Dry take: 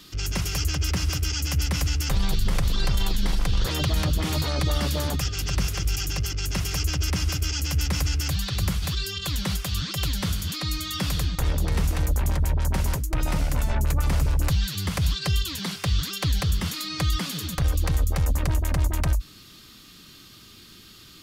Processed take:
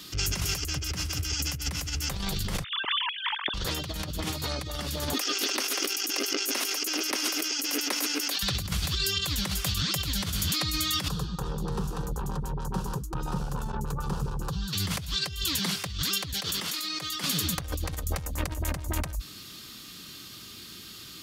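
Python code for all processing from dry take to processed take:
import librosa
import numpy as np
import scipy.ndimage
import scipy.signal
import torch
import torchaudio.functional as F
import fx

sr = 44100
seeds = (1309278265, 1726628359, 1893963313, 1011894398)

y = fx.chain(x, sr, fx.sine_speech(),
    fx.over_compress(threshold_db=-29.0, ratio=-1.0), at=(2.64, 3.54))
y = fx.chain(y, sr, fx.brickwall_highpass(low_hz=230.0),
    fx.notch(hz=7400.0, q=9.7),
    fx.env_flatten(amount_pct=100), at=(5.13, 8.43))
y = fx.chain(y, sr, fx.lowpass(hz=1700.0, slope=6),
    fx.fixed_phaser(hz=420.0, stages=8),
    fx.transformer_sat(knee_hz=64.0), at=(11.08, 14.73))
y = fx.chain(y, sr, fx.highpass(hz=300.0, slope=12),
    fx.over_compress(threshold_db=-37.0, ratio=-1.0),
    fx.quant_companded(bits=8), at=(16.33, 17.24))
y = fx.highpass(y, sr, hz=92.0, slope=6)
y = fx.high_shelf(y, sr, hz=4100.0, db=4.0)
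y = fx.over_compress(y, sr, threshold_db=-29.0, ratio=-0.5)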